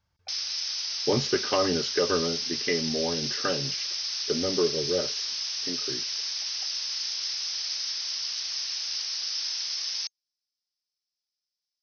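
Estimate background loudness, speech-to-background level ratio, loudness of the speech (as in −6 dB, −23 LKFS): −29.0 LKFS, −0.5 dB, −29.5 LKFS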